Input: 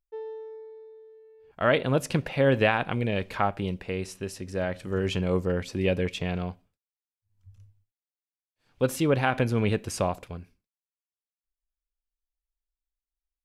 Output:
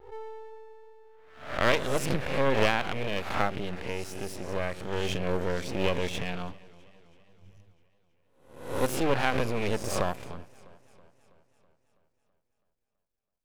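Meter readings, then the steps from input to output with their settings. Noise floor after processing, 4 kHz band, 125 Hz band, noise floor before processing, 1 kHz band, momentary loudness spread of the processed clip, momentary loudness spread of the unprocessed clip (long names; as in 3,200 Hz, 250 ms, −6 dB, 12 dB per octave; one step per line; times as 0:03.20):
−80 dBFS, +1.5 dB, −6.0 dB, below −85 dBFS, −0.5 dB, 17 LU, 15 LU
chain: peak hold with a rise ahead of every peak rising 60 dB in 0.65 s
half-wave rectification
feedback echo with a swinging delay time 327 ms, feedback 58%, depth 55 cents, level −23 dB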